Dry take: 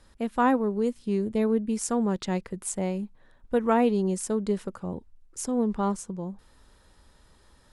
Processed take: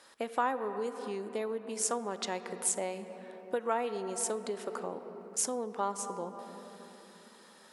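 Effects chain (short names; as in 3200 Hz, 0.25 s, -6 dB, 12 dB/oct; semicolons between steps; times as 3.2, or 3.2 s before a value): on a send at -12 dB: reverb RT60 3.4 s, pre-delay 4 ms; on the sum: compressor 5:1, threshold -31 dBFS, peak gain reduction 12.5 dB; HPF 510 Hz 12 dB/oct; gain +5.5 dB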